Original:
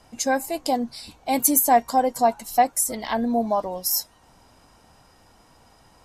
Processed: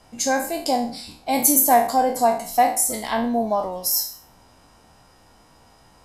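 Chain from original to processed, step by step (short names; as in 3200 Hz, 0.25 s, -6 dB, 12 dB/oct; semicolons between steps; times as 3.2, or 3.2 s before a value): spectral trails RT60 0.46 s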